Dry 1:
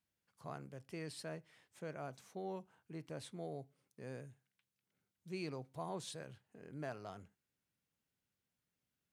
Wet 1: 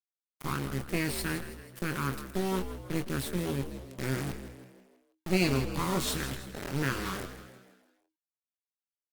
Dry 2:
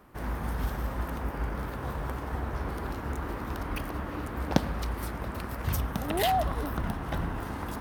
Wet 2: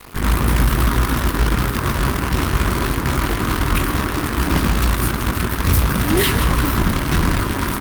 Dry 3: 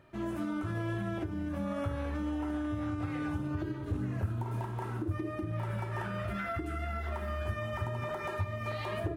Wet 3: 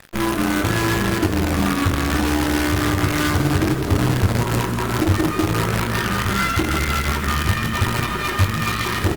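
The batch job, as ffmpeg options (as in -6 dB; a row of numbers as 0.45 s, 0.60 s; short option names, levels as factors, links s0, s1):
-filter_complex "[0:a]afftfilt=real='re*(1-between(b*sr/4096,410,930))':imag='im*(1-between(b*sr/4096,410,930))':win_size=4096:overlap=0.75,equalizer=f=6200:w=4.1:g=-3,acontrast=88,acrusher=bits=5:dc=4:mix=0:aa=0.000001,acontrast=89,asoftclip=type=hard:threshold=0.141,asplit=2[s0][s1];[s1]adelay=22,volume=0.355[s2];[s0][s2]amix=inputs=2:normalize=0,asplit=6[s3][s4][s5][s6][s7][s8];[s4]adelay=161,afreqshift=63,volume=0.266[s9];[s5]adelay=322,afreqshift=126,volume=0.123[s10];[s6]adelay=483,afreqshift=189,volume=0.0562[s11];[s7]adelay=644,afreqshift=252,volume=0.026[s12];[s8]adelay=805,afreqshift=315,volume=0.0119[s13];[s3][s9][s10][s11][s12][s13]amix=inputs=6:normalize=0,volume=1.78" -ar 48000 -c:a libopus -b:a 32k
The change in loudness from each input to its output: +15.0 LU, +14.0 LU, +16.0 LU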